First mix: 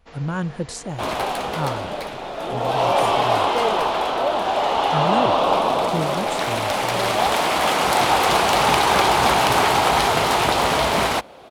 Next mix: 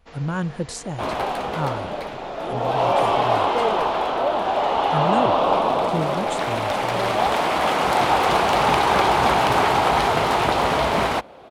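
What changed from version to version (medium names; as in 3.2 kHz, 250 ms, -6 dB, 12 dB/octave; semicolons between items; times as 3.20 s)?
second sound: add treble shelf 3.7 kHz -10 dB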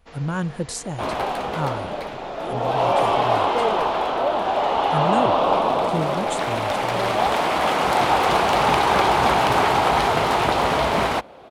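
speech: add treble shelf 9.6 kHz +9.5 dB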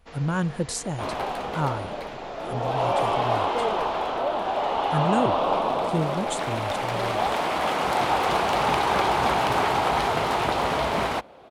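second sound -4.5 dB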